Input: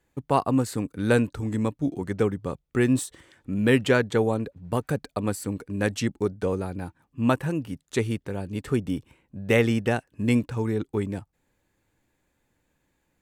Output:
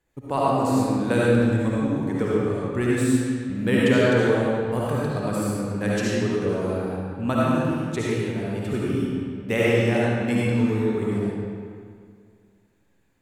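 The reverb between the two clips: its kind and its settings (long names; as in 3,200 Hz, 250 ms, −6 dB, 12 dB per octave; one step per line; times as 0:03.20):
comb and all-pass reverb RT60 2.1 s, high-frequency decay 0.75×, pre-delay 30 ms, DRR −7 dB
level −4.5 dB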